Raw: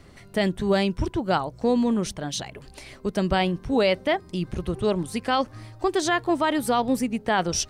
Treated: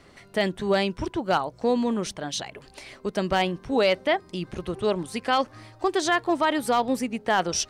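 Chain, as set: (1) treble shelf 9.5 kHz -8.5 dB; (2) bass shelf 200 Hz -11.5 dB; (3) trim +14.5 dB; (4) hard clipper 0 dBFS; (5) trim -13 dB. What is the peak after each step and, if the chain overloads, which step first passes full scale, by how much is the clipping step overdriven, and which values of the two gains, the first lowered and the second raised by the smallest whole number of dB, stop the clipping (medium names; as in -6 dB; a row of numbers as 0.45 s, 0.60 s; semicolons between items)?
-11.5 dBFS, -10.5 dBFS, +4.0 dBFS, 0.0 dBFS, -13.0 dBFS; step 3, 4.0 dB; step 3 +10.5 dB, step 5 -9 dB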